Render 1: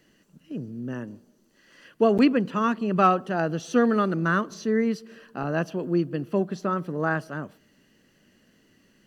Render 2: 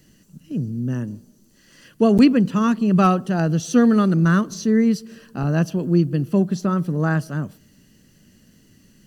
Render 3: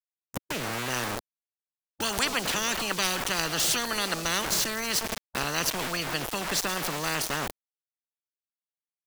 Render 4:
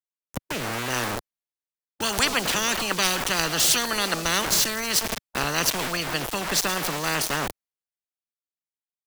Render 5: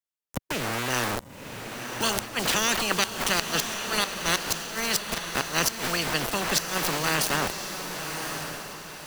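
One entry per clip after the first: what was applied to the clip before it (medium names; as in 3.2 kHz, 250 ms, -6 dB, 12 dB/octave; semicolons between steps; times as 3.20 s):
tone controls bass +14 dB, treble +12 dB
small samples zeroed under -35.5 dBFS; spectrum-flattening compressor 10:1
three bands expanded up and down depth 40%; trim +4 dB
inverted gate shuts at -10 dBFS, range -24 dB; echo that smears into a reverb 1062 ms, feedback 41%, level -7 dB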